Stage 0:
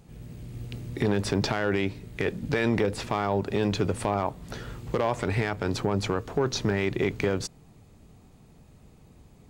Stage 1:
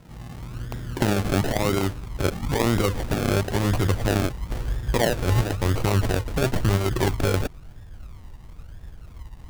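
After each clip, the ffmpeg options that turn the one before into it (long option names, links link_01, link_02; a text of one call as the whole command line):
ffmpeg -i in.wav -af "bandreject=frequency=430:width=12,asubboost=boost=7:cutoff=71,acrusher=samples=36:mix=1:aa=0.000001:lfo=1:lforange=21.6:lforate=0.99,volume=4.5dB" out.wav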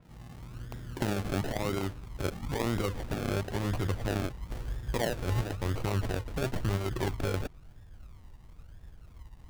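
ffmpeg -i in.wav -af "adynamicequalizer=threshold=0.00708:dfrequency=4700:dqfactor=0.7:tfrequency=4700:tqfactor=0.7:attack=5:release=100:ratio=0.375:range=1.5:mode=cutabove:tftype=highshelf,volume=-9dB" out.wav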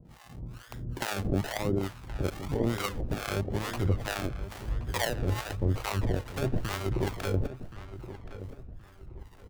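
ffmpeg -i in.wav -filter_complex "[0:a]acrossover=split=640[link_01][link_02];[link_01]aeval=exprs='val(0)*(1-1/2+1/2*cos(2*PI*2.3*n/s))':channel_layout=same[link_03];[link_02]aeval=exprs='val(0)*(1-1/2-1/2*cos(2*PI*2.3*n/s))':channel_layout=same[link_04];[link_03][link_04]amix=inputs=2:normalize=0,asplit=2[link_05][link_06];[link_06]adelay=1074,lowpass=frequency=2400:poles=1,volume=-13dB,asplit=2[link_07][link_08];[link_08]adelay=1074,lowpass=frequency=2400:poles=1,volume=0.33,asplit=2[link_09][link_10];[link_10]adelay=1074,lowpass=frequency=2400:poles=1,volume=0.33[link_11];[link_05][link_07][link_09][link_11]amix=inputs=4:normalize=0,volume=6dB" out.wav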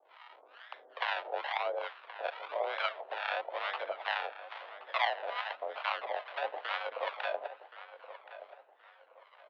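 ffmpeg -i in.wav -af "highpass=frequency=460:width_type=q:width=0.5412,highpass=frequency=460:width_type=q:width=1.307,lowpass=frequency=3500:width_type=q:width=0.5176,lowpass=frequency=3500:width_type=q:width=0.7071,lowpass=frequency=3500:width_type=q:width=1.932,afreqshift=150,volume=1.5dB" out.wav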